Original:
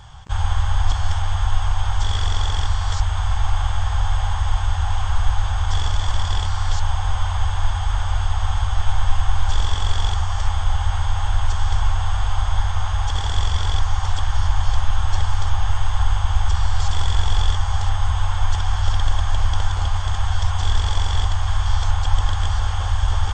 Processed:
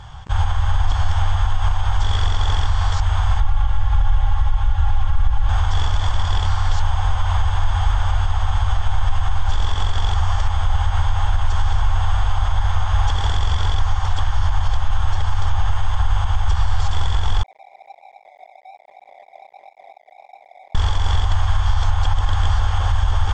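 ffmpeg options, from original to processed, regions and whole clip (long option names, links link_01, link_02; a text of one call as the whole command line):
ffmpeg -i in.wav -filter_complex "[0:a]asettb=1/sr,asplit=3[link_01][link_02][link_03];[link_01]atrim=end=3.404[link_04];[link_02]atrim=start=3.4:end=5.49,asetpts=PTS-STARTPTS,afade=type=in:duration=0.004:curve=qsin,afade=type=out:start_time=2.086:duration=0.004:curve=qsin,lowpass=frequency=2100:poles=1,equalizer=frequency=580:width=0.32:gain=-5.5,aecho=1:1:3.6:0.85,atrim=end_sample=92169[link_05];[link_03]atrim=start=5.486[link_06];[link_04][link_05]acrossfade=duration=0.004:curve1=hsin:curve2=qsin[link_07];[link_07][link_06]acrossfade=duration=0.004:curve1=qsin:curve2=hsin,asettb=1/sr,asplit=3[link_08][link_09][link_10];[link_08]atrim=end=17.434[link_11];[link_09]atrim=start=17.43:end=20.75,asetpts=PTS-STARTPTS,afade=type=in:duration=0.004:curve=qsin,afade=type=out:start_time=3.316:duration=0.004:curve=qsin,asuperpass=centerf=670:order=20:qfactor=2.8,flanger=delay=20:depth=6.2:speed=1.3,aeval=exprs='sgn(val(0))*max(abs(val(0))-0.00562,0)':channel_layout=same[link_12];[link_10]atrim=start=20.746[link_13];[link_11][link_12]acrossfade=duration=0.004:curve1=hsin:curve2=qsin[link_14];[link_14][link_13]acrossfade=duration=0.004:curve1=qsin:curve2=hsin,alimiter=limit=-12.5dB:level=0:latency=1:release=79,lowpass=frequency=3700:poles=1,volume=4.5dB" out.wav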